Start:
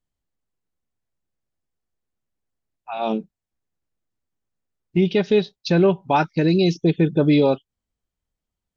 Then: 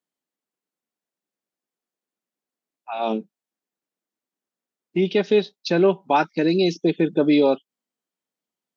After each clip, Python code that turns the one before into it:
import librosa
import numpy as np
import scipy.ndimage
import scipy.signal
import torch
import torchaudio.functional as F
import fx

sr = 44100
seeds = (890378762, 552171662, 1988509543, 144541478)

y = scipy.signal.sosfilt(scipy.signal.butter(4, 210.0, 'highpass', fs=sr, output='sos'), x)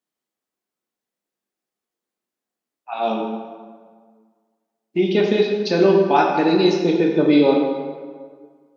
y = fx.rev_plate(x, sr, seeds[0], rt60_s=1.7, hf_ratio=0.65, predelay_ms=0, drr_db=-0.5)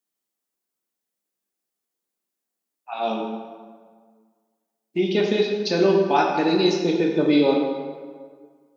y = fx.high_shelf(x, sr, hz=5600.0, db=10.5)
y = y * librosa.db_to_amplitude(-3.5)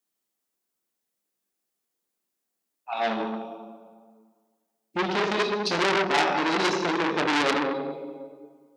y = fx.transformer_sat(x, sr, knee_hz=3600.0)
y = y * librosa.db_to_amplitude(1.5)